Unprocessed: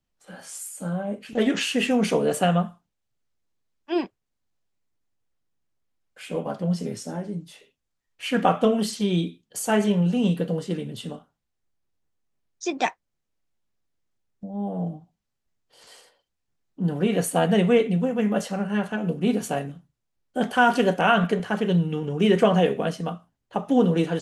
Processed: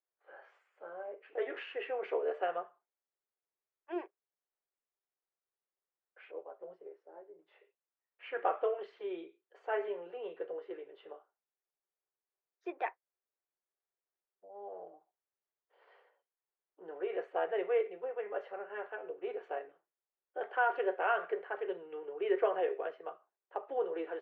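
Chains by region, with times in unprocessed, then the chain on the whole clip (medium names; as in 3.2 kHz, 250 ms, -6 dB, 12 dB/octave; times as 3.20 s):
6.31–7.39 s: peaking EQ 2.4 kHz -9.5 dB 2.3 oct + upward expansion, over -39 dBFS
whole clip: low-pass 2.1 kHz 24 dB/octave; dynamic bell 920 Hz, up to -3 dB, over -36 dBFS, Q 0.79; elliptic high-pass 370 Hz, stop band 40 dB; trim -8.5 dB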